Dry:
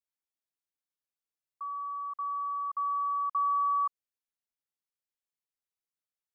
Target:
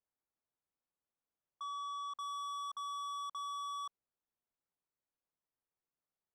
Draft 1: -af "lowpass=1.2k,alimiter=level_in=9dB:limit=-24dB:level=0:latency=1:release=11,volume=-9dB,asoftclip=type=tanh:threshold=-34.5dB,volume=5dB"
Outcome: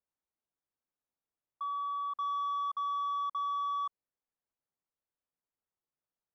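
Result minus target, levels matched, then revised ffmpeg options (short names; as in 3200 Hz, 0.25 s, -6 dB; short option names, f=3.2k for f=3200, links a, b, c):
soft clip: distortion -11 dB
-af "lowpass=1.2k,alimiter=level_in=9dB:limit=-24dB:level=0:latency=1:release=11,volume=-9dB,asoftclip=type=tanh:threshold=-45.5dB,volume=5dB"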